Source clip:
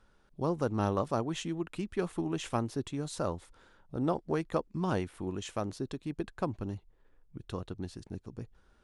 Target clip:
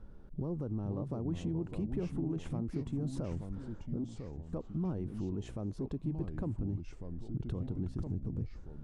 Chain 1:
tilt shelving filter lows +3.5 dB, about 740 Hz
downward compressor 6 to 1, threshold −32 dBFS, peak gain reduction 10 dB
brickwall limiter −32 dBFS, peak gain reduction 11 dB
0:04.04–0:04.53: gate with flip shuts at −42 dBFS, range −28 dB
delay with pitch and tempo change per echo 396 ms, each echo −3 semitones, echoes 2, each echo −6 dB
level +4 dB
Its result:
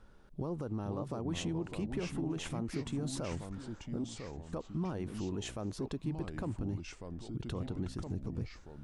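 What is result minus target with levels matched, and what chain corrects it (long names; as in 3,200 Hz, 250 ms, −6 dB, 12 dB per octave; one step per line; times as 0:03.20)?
1,000 Hz band +6.5 dB
tilt shelving filter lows +12.5 dB, about 740 Hz
downward compressor 6 to 1, threshold −32 dBFS, peak gain reduction 15 dB
brickwall limiter −32 dBFS, peak gain reduction 12 dB
0:04.04–0:04.53: gate with flip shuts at −42 dBFS, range −28 dB
delay with pitch and tempo change per echo 396 ms, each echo −3 semitones, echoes 2, each echo −6 dB
level +4 dB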